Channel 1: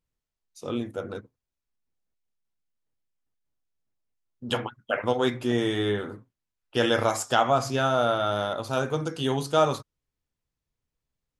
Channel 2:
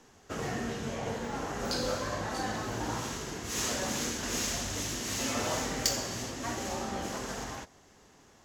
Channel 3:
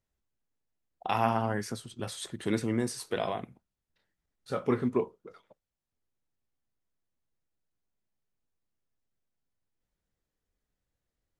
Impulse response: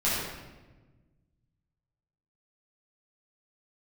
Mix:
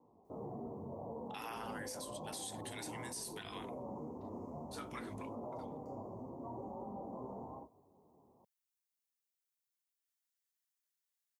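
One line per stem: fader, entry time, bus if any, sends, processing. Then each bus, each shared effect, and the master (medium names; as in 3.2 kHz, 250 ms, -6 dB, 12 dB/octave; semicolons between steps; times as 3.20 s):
mute
-2.0 dB, 0.00 s, bus A, no send, elliptic low-pass 1 kHz, stop band 40 dB; detune thickener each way 20 cents
-11.0 dB, 0.25 s, no bus, no send, steep high-pass 780 Hz 36 dB/octave; tilt EQ +4.5 dB/octave
bus A: 0.0 dB, peak limiter -37 dBFS, peak gain reduction 10 dB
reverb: none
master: high-pass 100 Hz 12 dB/octave; peak limiter -34.5 dBFS, peak gain reduction 10.5 dB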